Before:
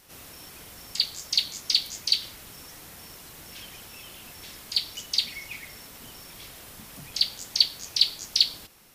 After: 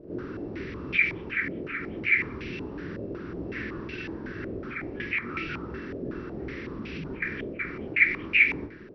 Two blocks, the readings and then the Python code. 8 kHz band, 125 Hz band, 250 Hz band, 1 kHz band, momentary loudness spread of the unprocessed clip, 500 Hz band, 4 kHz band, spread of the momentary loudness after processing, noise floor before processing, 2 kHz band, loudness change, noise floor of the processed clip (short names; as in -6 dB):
under -30 dB, +12.0 dB, +17.5 dB, +6.5 dB, 20 LU, +16.0 dB, -20.0 dB, 15 LU, -47 dBFS, +17.0 dB, -3.5 dB, -40 dBFS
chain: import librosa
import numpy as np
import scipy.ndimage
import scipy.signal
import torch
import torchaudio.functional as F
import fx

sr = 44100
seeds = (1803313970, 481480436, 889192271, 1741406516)

p1 = fx.partial_stretch(x, sr, pct=77)
p2 = fx.low_shelf_res(p1, sr, hz=520.0, db=13.0, q=3.0)
p3 = fx.over_compress(p2, sr, threshold_db=-36.0, ratio=-1.0)
p4 = p2 + (p3 * 10.0 ** (1.0 / 20.0))
p5 = fx.doubler(p4, sr, ms=28.0, db=-12.0)
p6 = p5 + fx.echo_single(p5, sr, ms=184, db=-14.5, dry=0)
p7 = fx.filter_held_lowpass(p6, sr, hz=5.4, low_hz=610.0, high_hz=2500.0)
y = p7 * 10.0 ** (-7.0 / 20.0)